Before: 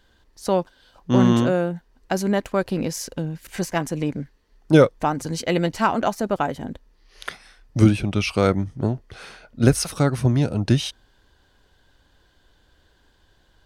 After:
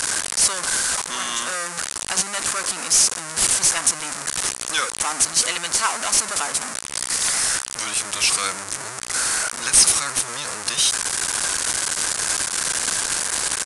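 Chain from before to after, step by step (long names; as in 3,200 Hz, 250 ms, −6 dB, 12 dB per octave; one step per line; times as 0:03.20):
spike at every zero crossing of −9.5 dBFS
Butterworth high-pass 1,100 Hz 36 dB per octave
spectral tilt +4.5 dB per octave
gain into a clipping stage and back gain 7 dB
downsampling to 22,050 Hz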